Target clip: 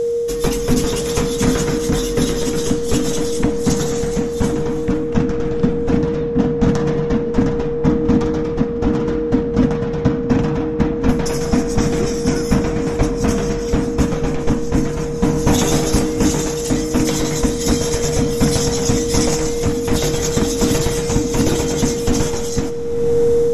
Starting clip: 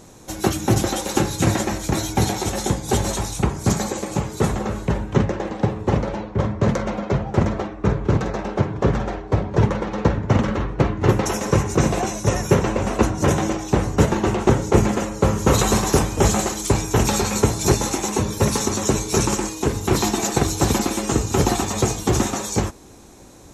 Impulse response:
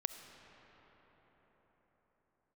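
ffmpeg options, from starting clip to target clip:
-filter_complex "[0:a]afreqshift=-360,aeval=exprs='val(0)+0.0794*sin(2*PI*470*n/s)':channel_layout=same,asplit=2[link_01][link_02];[1:a]atrim=start_sample=2205[link_03];[link_02][link_03]afir=irnorm=-1:irlink=0,volume=6.5dB[link_04];[link_01][link_04]amix=inputs=2:normalize=0,dynaudnorm=framelen=140:gausssize=5:maxgain=11.5dB,volume=-2.5dB"

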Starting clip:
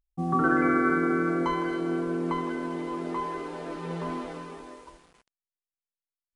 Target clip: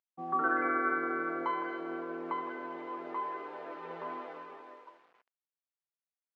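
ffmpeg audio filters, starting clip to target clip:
ffmpeg -i in.wav -af "highpass=520,lowpass=2200,volume=-3dB" out.wav

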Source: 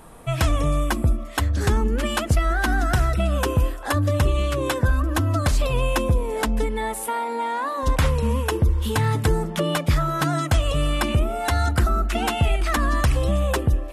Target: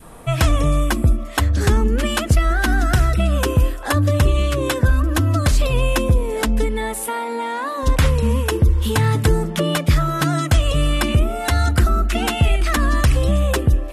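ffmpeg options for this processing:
ffmpeg -i in.wav -af "adynamicequalizer=threshold=0.01:dfrequency=880:dqfactor=1.2:tfrequency=880:tqfactor=1.2:attack=5:release=100:ratio=0.375:range=2.5:mode=cutabove:tftype=bell,volume=4.5dB" out.wav

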